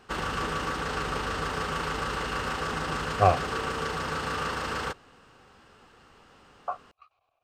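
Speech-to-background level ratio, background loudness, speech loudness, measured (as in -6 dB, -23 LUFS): 3.5 dB, -31.0 LUFS, -27.5 LUFS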